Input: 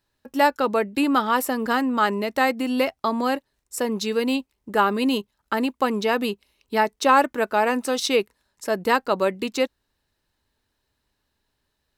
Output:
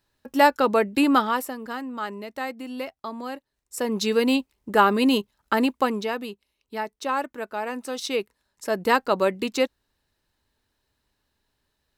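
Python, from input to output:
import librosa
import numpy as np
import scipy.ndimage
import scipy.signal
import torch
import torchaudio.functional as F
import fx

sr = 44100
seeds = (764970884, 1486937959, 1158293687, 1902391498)

y = fx.gain(x, sr, db=fx.line((1.16, 1.5), (1.59, -10.5), (3.35, -10.5), (4.05, 2.0), (5.73, 2.0), (6.26, -9.5), (7.62, -9.5), (8.91, 0.0)))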